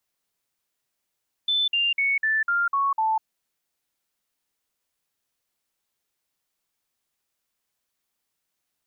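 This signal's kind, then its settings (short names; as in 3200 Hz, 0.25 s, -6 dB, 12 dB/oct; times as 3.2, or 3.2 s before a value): stepped sine 3520 Hz down, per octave 3, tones 7, 0.20 s, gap 0.05 s -19.5 dBFS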